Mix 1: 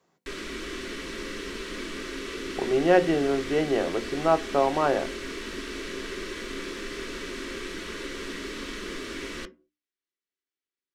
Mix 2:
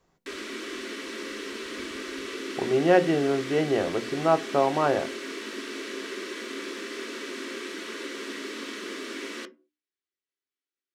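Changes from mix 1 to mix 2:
speech: remove high-pass 150 Hz 12 dB/octave; background: add brick-wall FIR high-pass 200 Hz

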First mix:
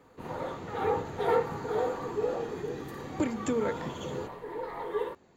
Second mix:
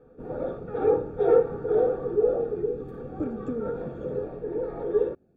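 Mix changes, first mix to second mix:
background +11.5 dB; master: add boxcar filter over 44 samples

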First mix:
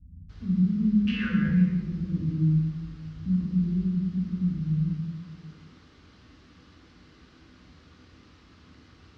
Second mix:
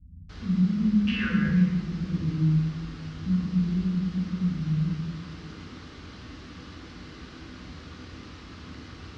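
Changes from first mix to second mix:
first sound +11.0 dB; second sound +3.0 dB

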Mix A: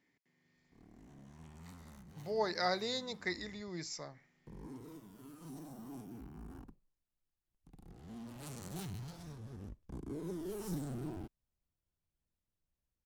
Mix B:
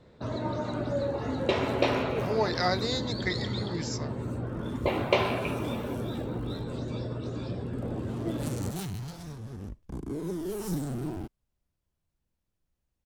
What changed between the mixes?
speech +6.0 dB; first sound: unmuted; second sound +8.0 dB

